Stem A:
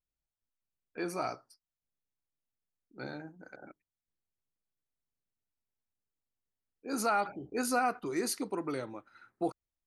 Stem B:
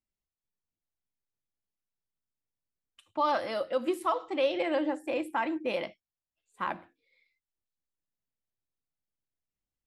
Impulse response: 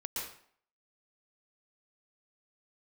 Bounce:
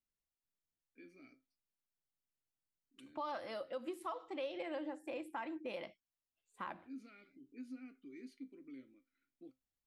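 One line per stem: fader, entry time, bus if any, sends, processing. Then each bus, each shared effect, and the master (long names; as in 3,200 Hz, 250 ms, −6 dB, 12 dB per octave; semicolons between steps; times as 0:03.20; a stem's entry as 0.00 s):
−3.5 dB, 0.00 s, no send, formant filter i; tuned comb filter 130 Hz, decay 0.2 s, harmonics all, mix 60%
−5.0 dB, 0.00 s, no send, no processing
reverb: not used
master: downward compressor 2 to 1, threshold −46 dBFS, peak gain reduction 10.5 dB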